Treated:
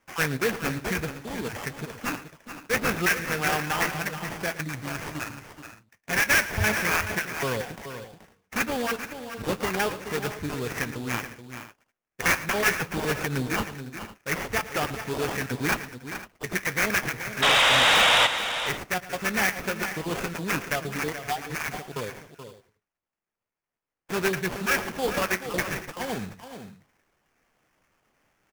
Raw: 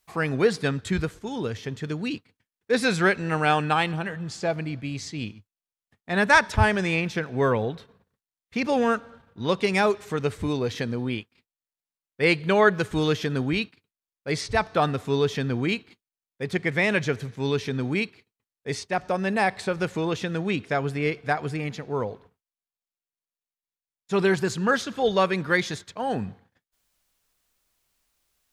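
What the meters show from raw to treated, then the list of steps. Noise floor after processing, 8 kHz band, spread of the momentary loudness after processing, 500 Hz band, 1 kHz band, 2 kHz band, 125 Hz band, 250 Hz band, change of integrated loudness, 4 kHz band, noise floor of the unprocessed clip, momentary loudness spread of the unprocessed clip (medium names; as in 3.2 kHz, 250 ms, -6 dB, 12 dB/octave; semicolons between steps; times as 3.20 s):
under -85 dBFS, +8.0 dB, 16 LU, -5.5 dB, -1.5 dB, +2.0 dB, -5.5 dB, -5.5 dB, -0.5 dB, +6.5 dB, under -85 dBFS, 11 LU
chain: random holes in the spectrogram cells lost 27%; flange 0.69 Hz, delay 4.2 ms, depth 6.8 ms, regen +64%; high-order bell 2.6 kHz +12 dB; in parallel at -1 dB: compression, threshold -39 dBFS, peak gain reduction 26 dB; on the sum: sample-rate reducer 4 kHz, jitter 20%; dynamic bell 7.4 kHz, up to -4 dB, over -36 dBFS, Q 1; painted sound noise, 17.42–18.27 s, 470–3900 Hz -12 dBFS; saturation -13.5 dBFS, distortion -10 dB; multi-tap echo 112/428/506 ms -16.5/-10.5/-18 dB; trim -2 dB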